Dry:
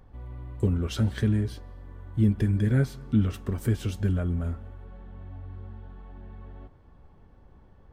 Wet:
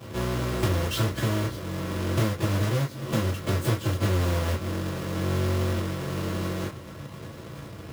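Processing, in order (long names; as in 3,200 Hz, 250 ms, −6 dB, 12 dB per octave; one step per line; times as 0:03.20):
each half-wave held at its own peak
high-pass filter 110 Hz 24 dB per octave
notch filter 740 Hz, Q 12
in parallel at 0 dB: brickwall limiter −18 dBFS, peak gain reduction 11.5 dB
on the sum: downward compressor 10 to 1, threshold −32 dBFS, peak gain reduction 20 dB
convolution reverb, pre-delay 3 ms, DRR −10 dB
level −2.5 dB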